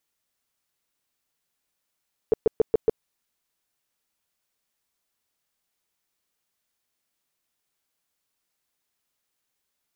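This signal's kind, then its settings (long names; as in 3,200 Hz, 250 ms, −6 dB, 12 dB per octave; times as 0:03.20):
tone bursts 444 Hz, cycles 7, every 0.14 s, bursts 5, −13.5 dBFS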